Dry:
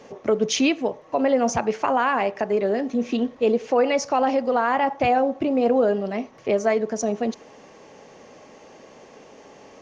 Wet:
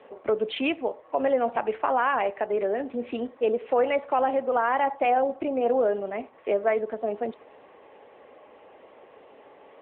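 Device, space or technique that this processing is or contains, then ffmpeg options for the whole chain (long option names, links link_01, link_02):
telephone: -af "highpass=370,lowpass=3100,volume=-1.5dB" -ar 8000 -c:a libopencore_amrnb -b:a 10200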